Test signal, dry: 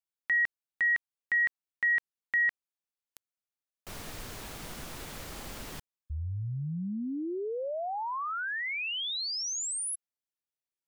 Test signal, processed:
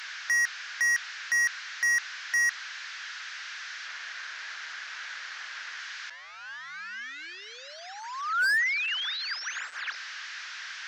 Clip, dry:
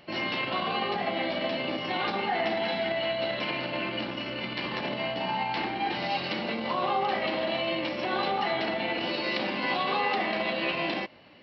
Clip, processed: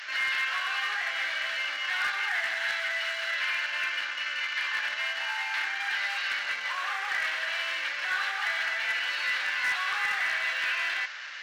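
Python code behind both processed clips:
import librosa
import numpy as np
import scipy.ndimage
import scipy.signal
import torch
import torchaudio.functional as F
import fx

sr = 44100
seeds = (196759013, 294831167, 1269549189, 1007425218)

y = fx.delta_mod(x, sr, bps=32000, step_db=-37.0)
y = np.clip(y, -10.0 ** (-27.5 / 20.0), 10.0 ** (-27.5 / 20.0))
y = fx.highpass_res(y, sr, hz=1600.0, q=4.5)
y = 10.0 ** (-20.5 / 20.0) * (np.abs((y / 10.0 ** (-20.5 / 20.0) + 3.0) % 4.0 - 2.0) - 1.0)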